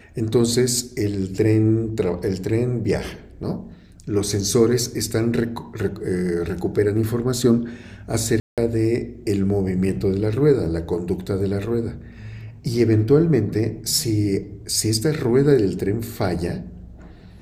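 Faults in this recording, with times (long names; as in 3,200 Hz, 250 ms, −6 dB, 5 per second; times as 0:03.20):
0:08.40–0:08.58: drop-out 177 ms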